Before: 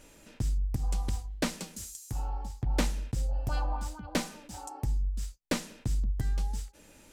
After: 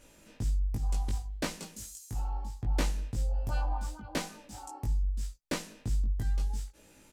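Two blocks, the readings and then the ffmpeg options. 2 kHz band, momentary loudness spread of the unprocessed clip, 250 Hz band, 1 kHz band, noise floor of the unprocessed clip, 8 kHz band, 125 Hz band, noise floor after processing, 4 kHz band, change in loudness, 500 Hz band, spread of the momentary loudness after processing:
−2.0 dB, 8 LU, −3.5 dB, −1.5 dB, −57 dBFS, −2.5 dB, −0.5 dB, −60 dBFS, −2.5 dB, −0.5 dB, −2.5 dB, 9 LU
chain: -filter_complex "[0:a]asplit=2[link_01][link_02];[link_02]adelay=19,volume=-2dB[link_03];[link_01][link_03]amix=inputs=2:normalize=0,volume=-4.5dB"

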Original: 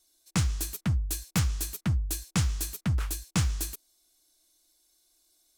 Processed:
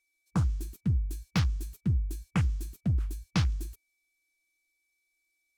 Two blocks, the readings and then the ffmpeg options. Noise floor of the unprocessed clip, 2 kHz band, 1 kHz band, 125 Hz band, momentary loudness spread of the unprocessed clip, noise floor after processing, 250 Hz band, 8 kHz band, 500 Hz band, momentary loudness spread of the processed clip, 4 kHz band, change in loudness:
−69 dBFS, −3.0 dB, −1.5 dB, 0.0 dB, 3 LU, −78 dBFS, 0.0 dB, −14.5 dB, −1.5 dB, 4 LU, −5.5 dB, −1.0 dB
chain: -af "aeval=exprs='val(0)+0.001*sin(2*PI*2300*n/s)':channel_layout=same,afwtdn=0.0126"

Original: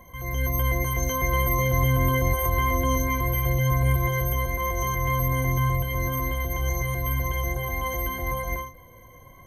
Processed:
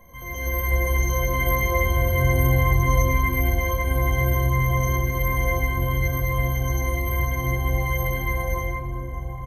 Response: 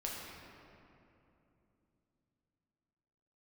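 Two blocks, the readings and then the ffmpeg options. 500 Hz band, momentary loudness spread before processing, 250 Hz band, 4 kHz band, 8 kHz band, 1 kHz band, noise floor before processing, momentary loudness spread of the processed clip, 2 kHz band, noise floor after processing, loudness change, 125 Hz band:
+2.5 dB, 6 LU, +1.0 dB, 0.0 dB, 0.0 dB, 0.0 dB, −49 dBFS, 7 LU, +3.5 dB, −32 dBFS, +2.0 dB, +2.5 dB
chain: -filter_complex "[0:a]asplit=2[link_01][link_02];[link_02]adelay=1516,volume=-9dB,highshelf=frequency=4000:gain=-34.1[link_03];[link_01][link_03]amix=inputs=2:normalize=0[link_04];[1:a]atrim=start_sample=2205[link_05];[link_04][link_05]afir=irnorm=-1:irlink=0"

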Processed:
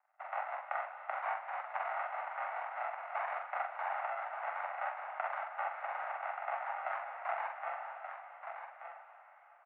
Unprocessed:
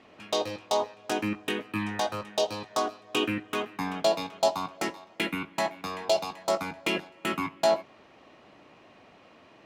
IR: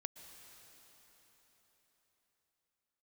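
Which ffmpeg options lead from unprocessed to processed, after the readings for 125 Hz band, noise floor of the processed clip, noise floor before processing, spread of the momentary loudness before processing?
below −40 dB, −60 dBFS, −56 dBFS, 6 LU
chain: -filter_complex "[0:a]agate=range=-29dB:threshold=-49dB:ratio=16:detection=peak,acontrast=35,alimiter=limit=-19dB:level=0:latency=1:release=245,acompressor=threshold=-44dB:ratio=2,aresample=8000,acrusher=samples=12:mix=1:aa=0.000001,aresample=44100,flanger=delay=0.3:depth=8.6:regen=80:speed=0.57:shape=triangular,aeval=exprs='abs(val(0))':channel_layout=same,highpass=frequency=380:width_type=q:width=0.5412,highpass=frequency=380:width_type=q:width=1.307,lowpass=frequency=2100:width_type=q:width=0.5176,lowpass=frequency=2100:width_type=q:width=0.7071,lowpass=frequency=2100:width_type=q:width=1.932,afreqshift=350,asplit=2[link_01][link_02];[link_02]adelay=44,volume=-4dB[link_03];[link_01][link_03]amix=inputs=2:normalize=0,aecho=1:1:1180:0.398,asplit=2[link_04][link_05];[1:a]atrim=start_sample=2205,asetrate=37044,aresample=44100,lowpass=2300[link_06];[link_05][link_06]afir=irnorm=-1:irlink=0,volume=7.5dB[link_07];[link_04][link_07]amix=inputs=2:normalize=0,volume=8.5dB"

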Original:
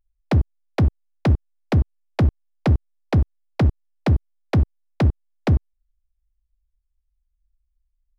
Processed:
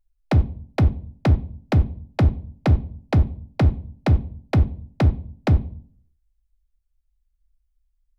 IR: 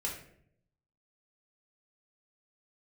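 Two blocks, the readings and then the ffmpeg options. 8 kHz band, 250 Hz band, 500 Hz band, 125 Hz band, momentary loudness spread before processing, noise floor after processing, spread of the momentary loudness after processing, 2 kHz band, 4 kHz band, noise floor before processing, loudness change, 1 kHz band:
can't be measured, −0.5 dB, −0.5 dB, +0.5 dB, 4 LU, −70 dBFS, 5 LU, 0.0 dB, 0.0 dB, −74 dBFS, +0.5 dB, +1.0 dB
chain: -filter_complex "[0:a]asplit=2[link_01][link_02];[1:a]atrim=start_sample=2205,asetrate=66150,aresample=44100[link_03];[link_02][link_03]afir=irnorm=-1:irlink=0,volume=-7.5dB[link_04];[link_01][link_04]amix=inputs=2:normalize=0,volume=-1.5dB"

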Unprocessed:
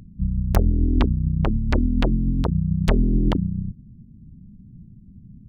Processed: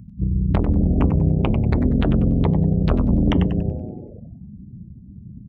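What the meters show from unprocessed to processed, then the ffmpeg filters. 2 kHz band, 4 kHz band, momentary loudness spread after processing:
−1.0 dB, −1.0 dB, 9 LU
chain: -filter_complex "[0:a]tremolo=f=22:d=0.462,equalizer=frequency=3900:width_type=o:width=2.1:gain=6,acrossover=split=3400[link_01][link_02];[link_02]acompressor=threshold=-42dB:ratio=4:attack=1:release=60[link_03];[link_01][link_03]amix=inputs=2:normalize=0,asoftclip=type=tanh:threshold=-19dB,bandreject=frequency=165.8:width_type=h:width=4,bandreject=frequency=331.6:width_type=h:width=4,bandreject=frequency=497.4:width_type=h:width=4,bandreject=frequency=663.2:width_type=h:width=4,bandreject=frequency=829:width_type=h:width=4,bandreject=frequency=994.8:width_type=h:width=4,bandreject=frequency=1160.6:width_type=h:width=4,bandreject=frequency=1326.4:width_type=h:width=4,bandreject=frequency=1492.2:width_type=h:width=4,bandreject=frequency=1658:width_type=h:width=4,bandreject=frequency=1823.8:width_type=h:width=4,bandreject=frequency=1989.6:width_type=h:width=4,bandreject=frequency=2155.4:width_type=h:width=4,bandreject=frequency=2321.2:width_type=h:width=4,bandreject=frequency=2487:width_type=h:width=4,bandreject=frequency=2652.8:width_type=h:width=4,bandreject=frequency=2818.6:width_type=h:width=4,bandreject=frequency=2984.4:width_type=h:width=4,bandreject=frequency=3150.2:width_type=h:width=4,bandreject=frequency=3316:width_type=h:width=4,bandreject=frequency=3481.8:width_type=h:width=4,bandreject=frequency=3647.6:width_type=h:width=4,bandreject=frequency=3813.4:width_type=h:width=4,bandreject=frequency=3979.2:width_type=h:width=4,bandreject=frequency=4145:width_type=h:width=4,bandreject=frequency=4310.8:width_type=h:width=4,bandreject=frequency=4476.6:width_type=h:width=4,asplit=9[link_04][link_05][link_06][link_07][link_08][link_09][link_10][link_11][link_12];[link_05]adelay=95,afreqshift=-110,volume=-5.5dB[link_13];[link_06]adelay=190,afreqshift=-220,volume=-10.1dB[link_14];[link_07]adelay=285,afreqshift=-330,volume=-14.7dB[link_15];[link_08]adelay=380,afreqshift=-440,volume=-19.2dB[link_16];[link_09]adelay=475,afreqshift=-550,volume=-23.8dB[link_17];[link_10]adelay=570,afreqshift=-660,volume=-28.4dB[link_18];[link_11]adelay=665,afreqshift=-770,volume=-33dB[link_19];[link_12]adelay=760,afreqshift=-880,volume=-37.6dB[link_20];[link_04][link_13][link_14][link_15][link_16][link_17][link_18][link_19][link_20]amix=inputs=9:normalize=0,afftdn=noise_reduction=21:noise_floor=-42,highpass=59,volume=8dB"

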